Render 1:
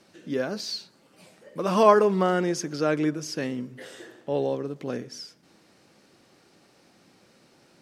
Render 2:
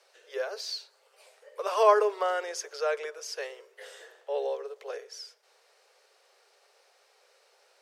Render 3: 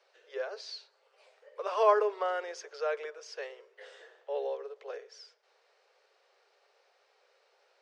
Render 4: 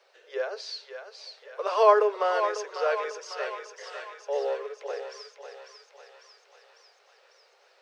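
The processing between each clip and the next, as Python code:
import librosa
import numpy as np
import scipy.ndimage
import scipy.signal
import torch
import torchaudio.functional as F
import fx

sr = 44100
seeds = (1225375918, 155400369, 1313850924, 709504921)

y1 = scipy.signal.sosfilt(scipy.signal.butter(16, 410.0, 'highpass', fs=sr, output='sos'), x)
y1 = y1 * librosa.db_to_amplitude(-3.0)
y2 = fx.air_absorb(y1, sr, metres=120.0)
y2 = y2 * librosa.db_to_amplitude(-3.0)
y3 = fx.echo_thinned(y2, sr, ms=548, feedback_pct=66, hz=740.0, wet_db=-6.5)
y3 = y3 * librosa.db_to_amplitude(5.5)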